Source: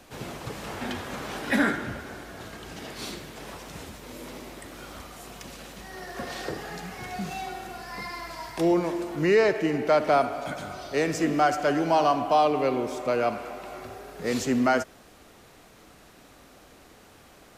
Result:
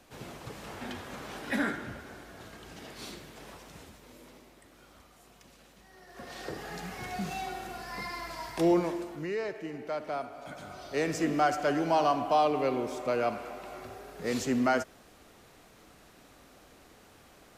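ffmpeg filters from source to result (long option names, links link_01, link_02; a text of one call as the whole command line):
ffmpeg -i in.wav -af "volume=15.5dB,afade=type=out:start_time=3.37:duration=1.13:silence=0.398107,afade=type=in:start_time=6.06:duration=0.8:silence=0.223872,afade=type=out:start_time=8.76:duration=0.52:silence=0.266073,afade=type=in:start_time=10.33:duration=0.76:silence=0.334965" out.wav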